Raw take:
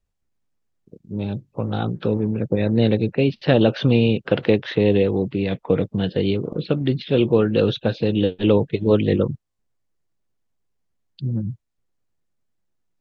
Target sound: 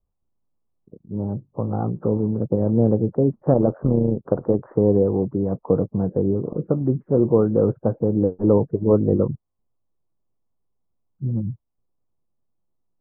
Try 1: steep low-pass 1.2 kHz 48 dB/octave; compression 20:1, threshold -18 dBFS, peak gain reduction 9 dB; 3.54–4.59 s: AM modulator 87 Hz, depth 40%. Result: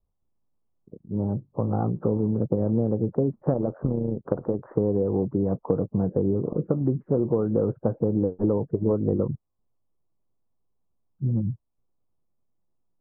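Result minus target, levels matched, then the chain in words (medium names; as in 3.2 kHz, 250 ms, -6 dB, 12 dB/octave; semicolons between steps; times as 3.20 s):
compression: peak gain reduction +9 dB
steep low-pass 1.2 kHz 48 dB/octave; 3.54–4.59 s: AM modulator 87 Hz, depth 40%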